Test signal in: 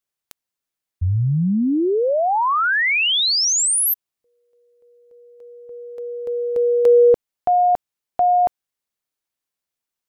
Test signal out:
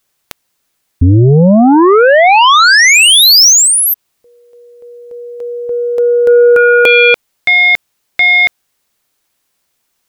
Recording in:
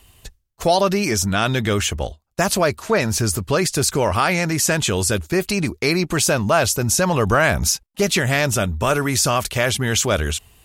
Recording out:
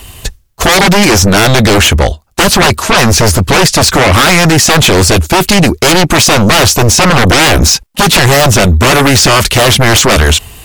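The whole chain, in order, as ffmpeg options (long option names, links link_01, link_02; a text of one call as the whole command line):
ffmpeg -i in.wav -filter_complex "[0:a]acrossover=split=5400[link_01][link_02];[link_02]acompressor=threshold=-33dB:ratio=4:attack=1:release=60[link_03];[link_01][link_03]amix=inputs=2:normalize=0,aeval=exprs='0.596*sin(PI/2*5.62*val(0)/0.596)':channel_layout=same,volume=1.5dB" out.wav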